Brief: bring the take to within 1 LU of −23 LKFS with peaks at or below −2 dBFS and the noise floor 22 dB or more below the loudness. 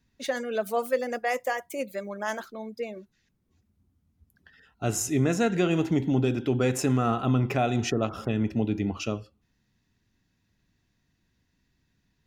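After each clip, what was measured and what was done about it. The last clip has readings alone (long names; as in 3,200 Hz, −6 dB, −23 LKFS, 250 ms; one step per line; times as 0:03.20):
integrated loudness −27.5 LKFS; sample peak −13.0 dBFS; target loudness −23.0 LKFS
→ level +4.5 dB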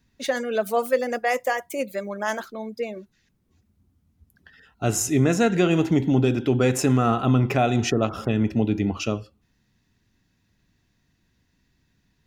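integrated loudness −23.0 LKFS; sample peak −8.5 dBFS; background noise floor −69 dBFS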